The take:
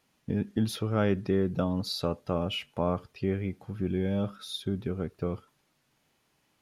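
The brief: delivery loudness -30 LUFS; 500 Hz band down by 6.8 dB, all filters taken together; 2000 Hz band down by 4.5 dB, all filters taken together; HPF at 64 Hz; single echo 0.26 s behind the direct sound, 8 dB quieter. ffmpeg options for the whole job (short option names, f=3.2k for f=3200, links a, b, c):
-af "highpass=64,equalizer=f=500:t=o:g=-9,equalizer=f=2k:t=o:g=-5.5,aecho=1:1:260:0.398,volume=3dB"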